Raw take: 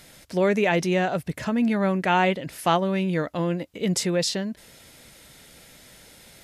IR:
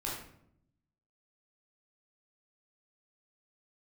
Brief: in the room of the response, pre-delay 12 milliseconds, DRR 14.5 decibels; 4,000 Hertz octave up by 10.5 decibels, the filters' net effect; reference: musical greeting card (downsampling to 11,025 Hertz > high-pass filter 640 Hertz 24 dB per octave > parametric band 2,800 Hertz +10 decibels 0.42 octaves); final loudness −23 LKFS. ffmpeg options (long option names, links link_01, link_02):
-filter_complex "[0:a]equalizer=frequency=4000:width_type=o:gain=8,asplit=2[link_01][link_02];[1:a]atrim=start_sample=2205,adelay=12[link_03];[link_02][link_03]afir=irnorm=-1:irlink=0,volume=-17.5dB[link_04];[link_01][link_04]amix=inputs=2:normalize=0,aresample=11025,aresample=44100,highpass=frequency=640:width=0.5412,highpass=frequency=640:width=1.3066,equalizer=frequency=2800:width_type=o:width=0.42:gain=10"